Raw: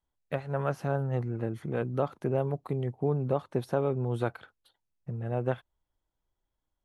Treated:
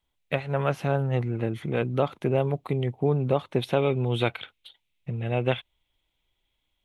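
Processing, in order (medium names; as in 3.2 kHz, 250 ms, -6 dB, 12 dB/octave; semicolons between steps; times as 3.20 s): high-order bell 2.8 kHz +9 dB 1.1 oct, from 3.61 s +15.5 dB; trim +4.5 dB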